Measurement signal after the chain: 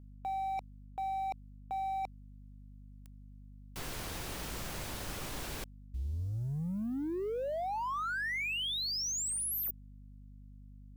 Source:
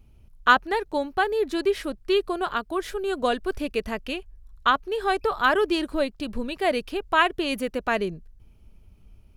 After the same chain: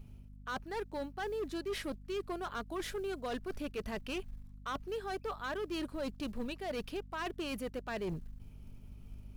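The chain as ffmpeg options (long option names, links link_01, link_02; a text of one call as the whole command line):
ffmpeg -i in.wav -af "areverse,acompressor=threshold=-33dB:ratio=16,areverse,acrusher=bits=8:mode=log:mix=0:aa=0.000001,volume=33dB,asoftclip=hard,volume=-33dB,aeval=exprs='val(0)+0.00282*(sin(2*PI*50*n/s)+sin(2*PI*2*50*n/s)/2+sin(2*PI*3*50*n/s)/3+sin(2*PI*4*50*n/s)/4+sin(2*PI*5*50*n/s)/5)':channel_layout=same" out.wav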